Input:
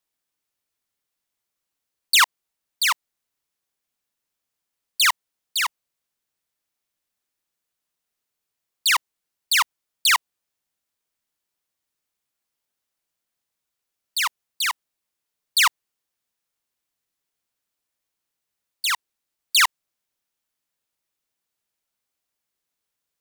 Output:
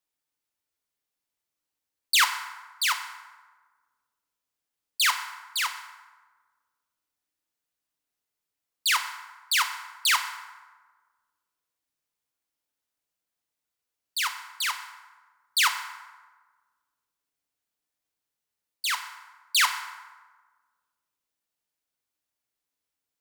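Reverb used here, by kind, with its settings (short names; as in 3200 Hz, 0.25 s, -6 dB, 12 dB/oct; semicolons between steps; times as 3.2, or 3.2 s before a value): FDN reverb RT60 1.4 s, low-frequency decay 0.85×, high-frequency decay 0.55×, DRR 5.5 dB; gain -5 dB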